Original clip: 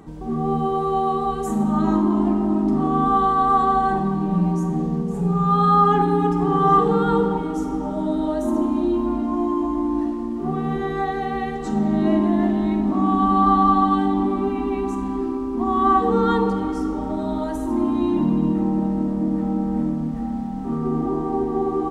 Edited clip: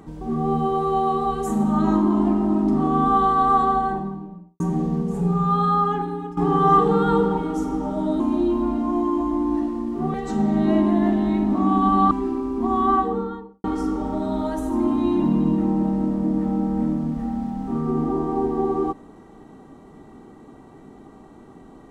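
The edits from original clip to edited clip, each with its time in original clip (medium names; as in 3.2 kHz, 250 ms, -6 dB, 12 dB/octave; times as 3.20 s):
3.48–4.60 s: studio fade out
5.24–6.37 s: fade out, to -16 dB
8.20–8.64 s: delete
10.58–11.51 s: delete
13.48–15.08 s: delete
15.66–16.61 s: studio fade out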